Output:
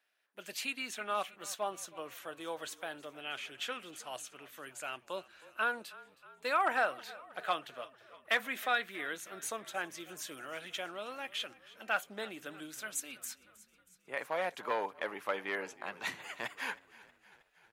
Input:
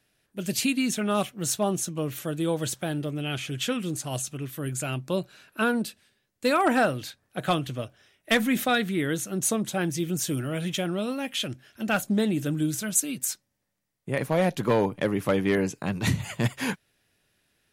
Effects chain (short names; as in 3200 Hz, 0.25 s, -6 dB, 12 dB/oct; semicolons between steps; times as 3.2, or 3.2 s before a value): HPF 1000 Hz 12 dB/oct; bell 9700 Hz -15 dB 2.8 oct; on a send: frequency-shifting echo 0.317 s, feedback 62%, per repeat -31 Hz, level -20 dB